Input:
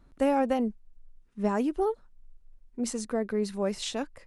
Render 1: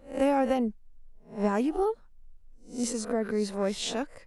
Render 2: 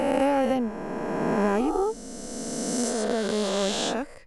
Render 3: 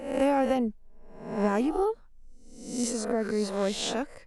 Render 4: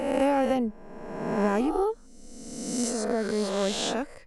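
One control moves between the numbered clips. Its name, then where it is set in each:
peak hold with a rise ahead of every peak, rising 60 dB in: 0.35, 3.21, 0.72, 1.5 seconds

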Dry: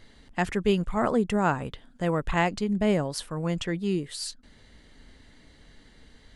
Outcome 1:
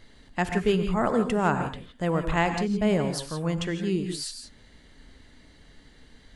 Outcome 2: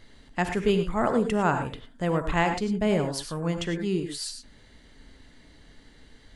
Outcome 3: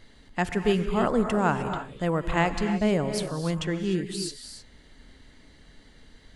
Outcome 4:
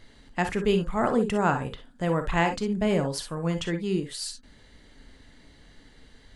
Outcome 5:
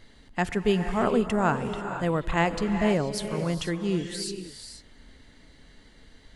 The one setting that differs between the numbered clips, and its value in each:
reverb whose tail is shaped and stops, gate: 190, 130, 330, 80, 520 milliseconds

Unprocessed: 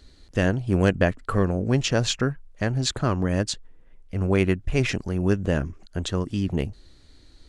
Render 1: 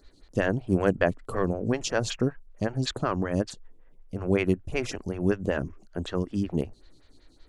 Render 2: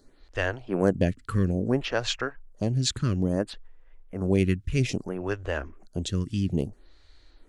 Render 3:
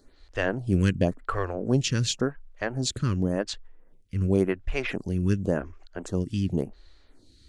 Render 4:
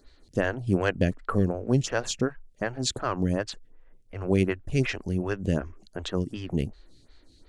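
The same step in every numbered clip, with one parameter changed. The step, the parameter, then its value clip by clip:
phaser with staggered stages, speed: 5.3, 0.6, 0.91, 2.7 Hertz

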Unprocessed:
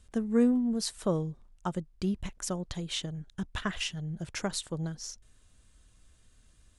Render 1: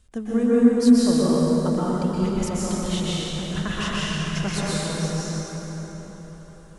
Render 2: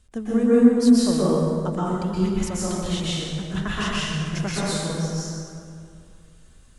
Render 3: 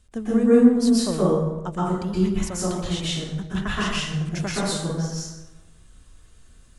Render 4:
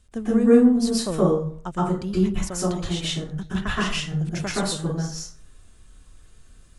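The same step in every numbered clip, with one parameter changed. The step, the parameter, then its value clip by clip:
dense smooth reverb, RT60: 5, 2.4, 1.1, 0.51 seconds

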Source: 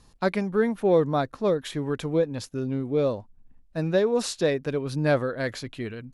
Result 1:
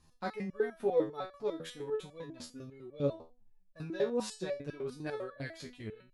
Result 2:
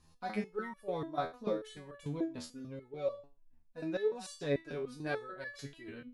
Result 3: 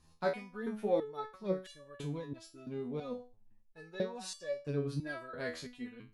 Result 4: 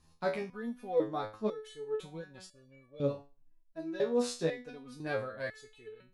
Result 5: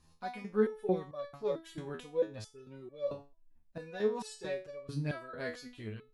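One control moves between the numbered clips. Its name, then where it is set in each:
step-sequenced resonator, speed: 10, 6.8, 3, 2, 4.5 Hertz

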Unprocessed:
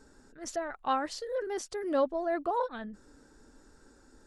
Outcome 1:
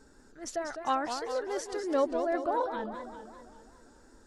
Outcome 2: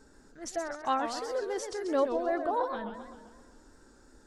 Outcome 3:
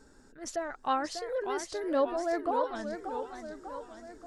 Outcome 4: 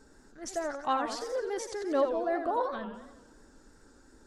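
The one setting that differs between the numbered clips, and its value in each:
feedback echo with a swinging delay time, delay time: 198, 130, 587, 89 milliseconds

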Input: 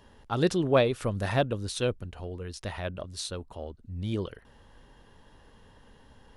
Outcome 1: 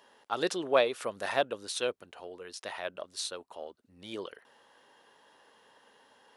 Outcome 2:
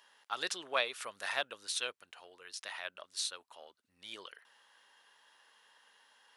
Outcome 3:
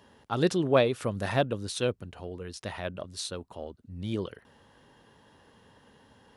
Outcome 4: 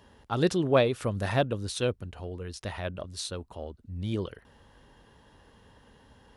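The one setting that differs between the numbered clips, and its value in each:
high-pass filter, corner frequency: 490, 1,300, 110, 43 Hertz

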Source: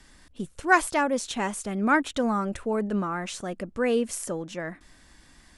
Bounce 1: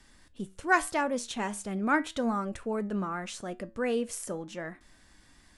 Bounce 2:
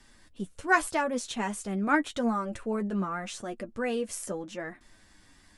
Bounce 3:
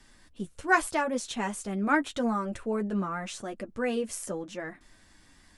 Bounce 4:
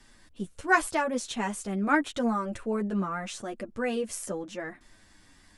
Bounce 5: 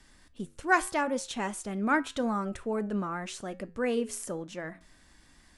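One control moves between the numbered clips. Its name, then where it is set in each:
flanger, regen: +80, +28, −24, 0, −84%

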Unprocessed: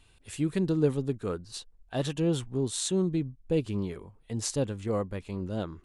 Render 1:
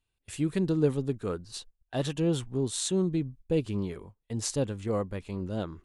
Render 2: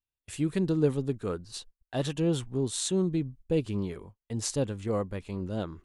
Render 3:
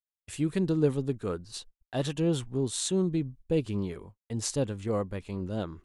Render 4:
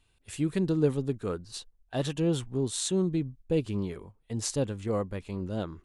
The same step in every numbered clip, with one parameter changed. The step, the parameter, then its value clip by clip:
noise gate, range: −21, −36, −56, −8 decibels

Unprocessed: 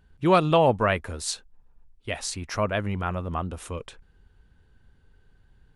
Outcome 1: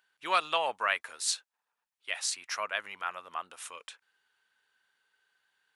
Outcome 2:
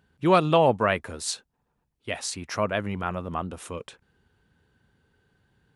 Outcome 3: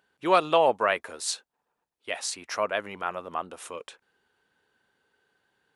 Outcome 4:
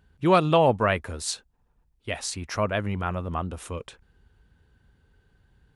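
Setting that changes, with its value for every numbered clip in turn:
high-pass filter, corner frequency: 1,300, 120, 450, 42 Hertz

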